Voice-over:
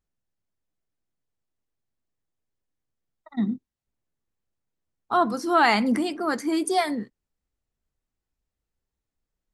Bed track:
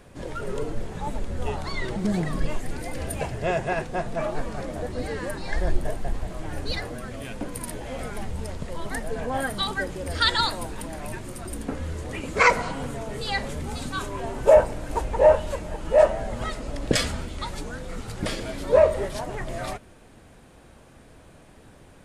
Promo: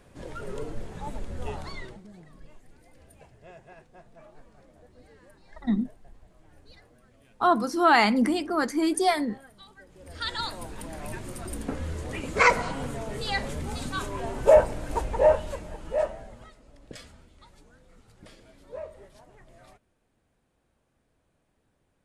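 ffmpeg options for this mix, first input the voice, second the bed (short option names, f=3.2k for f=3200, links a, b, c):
-filter_complex "[0:a]adelay=2300,volume=0dB[a];[1:a]volume=17dB,afade=t=out:st=1.61:d=0.43:silence=0.11885,afade=t=in:st=9.86:d=1.41:silence=0.0749894,afade=t=out:st=14.92:d=1.6:silence=0.0944061[b];[a][b]amix=inputs=2:normalize=0"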